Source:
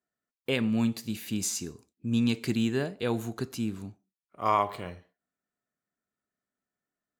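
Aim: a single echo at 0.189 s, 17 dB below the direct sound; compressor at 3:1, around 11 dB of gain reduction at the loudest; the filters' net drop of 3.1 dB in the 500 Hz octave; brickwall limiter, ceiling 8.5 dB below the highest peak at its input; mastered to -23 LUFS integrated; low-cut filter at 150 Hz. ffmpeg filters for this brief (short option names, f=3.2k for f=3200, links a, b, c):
-af "highpass=150,equalizer=f=500:t=o:g=-4,acompressor=threshold=-36dB:ratio=3,alimiter=level_in=5.5dB:limit=-24dB:level=0:latency=1,volume=-5.5dB,aecho=1:1:189:0.141,volume=18dB"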